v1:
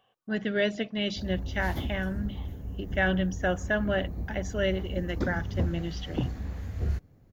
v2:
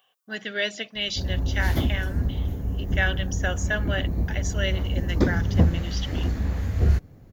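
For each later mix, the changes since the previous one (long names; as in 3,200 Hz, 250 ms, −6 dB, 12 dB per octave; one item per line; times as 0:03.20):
speech: add spectral tilt +4 dB per octave
background +9.5 dB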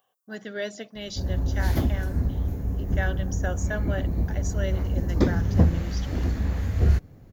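speech: add parametric band 2,700 Hz −14.5 dB 1.4 octaves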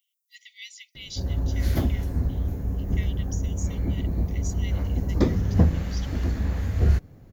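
speech: add linear-phase brick-wall high-pass 1,900 Hz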